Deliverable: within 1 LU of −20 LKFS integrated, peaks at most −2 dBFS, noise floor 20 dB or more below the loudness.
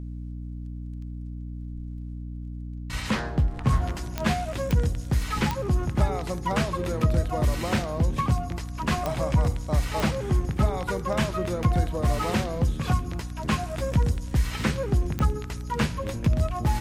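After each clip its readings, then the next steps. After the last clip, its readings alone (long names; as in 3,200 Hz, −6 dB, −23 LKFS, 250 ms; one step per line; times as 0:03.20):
number of clicks 6; mains hum 60 Hz; hum harmonics up to 300 Hz; level of the hum −33 dBFS; integrated loudness −26.5 LKFS; sample peak −10.0 dBFS; target loudness −20.0 LKFS
→ click removal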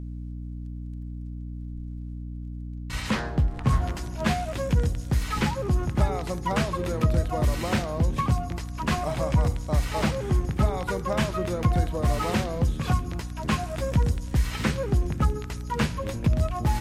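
number of clicks 0; mains hum 60 Hz; hum harmonics up to 300 Hz; level of the hum −33 dBFS
→ mains-hum notches 60/120/180/240/300 Hz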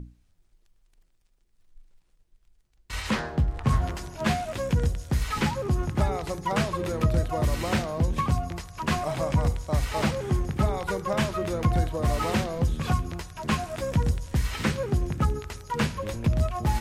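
mains hum none found; integrated loudness −27.5 LKFS; sample peak −11.0 dBFS; target loudness −20.0 LKFS
→ level +7.5 dB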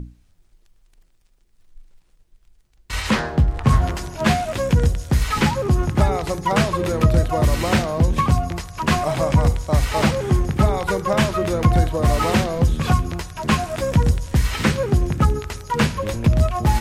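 integrated loudness −20.0 LKFS; sample peak −3.5 dBFS; background noise floor −58 dBFS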